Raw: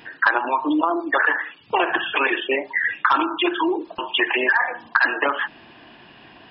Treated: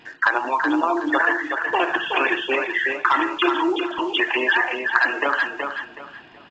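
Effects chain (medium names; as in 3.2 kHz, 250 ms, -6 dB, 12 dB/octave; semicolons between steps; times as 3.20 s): in parallel at -9 dB: bit crusher 6-bit; on the sum: feedback comb 350 Hz, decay 0.18 s, harmonics all, mix 30%; feedback delay 373 ms, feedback 27%, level -5.5 dB; trim -1 dB; µ-law 128 kbps 16 kHz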